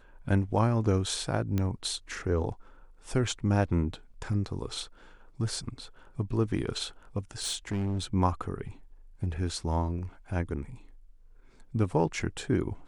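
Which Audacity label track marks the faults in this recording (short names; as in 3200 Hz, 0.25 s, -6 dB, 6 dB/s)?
1.580000	1.580000	pop -17 dBFS
7.420000	8.140000	clipped -27 dBFS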